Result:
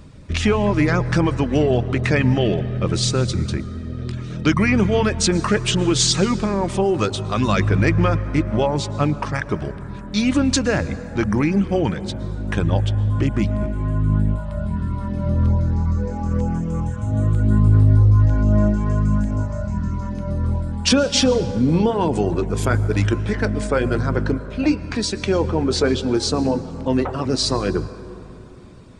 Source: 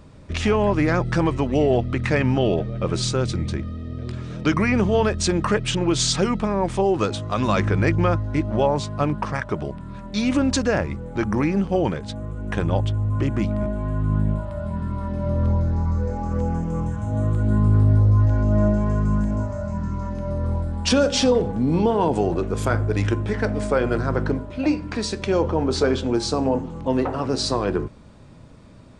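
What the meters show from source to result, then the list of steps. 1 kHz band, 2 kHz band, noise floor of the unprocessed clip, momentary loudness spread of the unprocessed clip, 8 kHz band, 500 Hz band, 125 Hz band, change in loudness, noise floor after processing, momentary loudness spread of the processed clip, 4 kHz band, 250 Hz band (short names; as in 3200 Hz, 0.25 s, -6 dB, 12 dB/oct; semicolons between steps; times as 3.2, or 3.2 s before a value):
0.0 dB, +3.0 dB, -37 dBFS, 9 LU, +4.5 dB, +0.5 dB, +3.0 dB, +2.5 dB, -34 dBFS, 9 LU, +4.5 dB, +2.5 dB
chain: reverb removal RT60 0.51 s; bell 720 Hz -5.5 dB 2 oct; plate-style reverb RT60 3.2 s, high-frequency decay 0.4×, pre-delay 0.1 s, DRR 14 dB; gain +5 dB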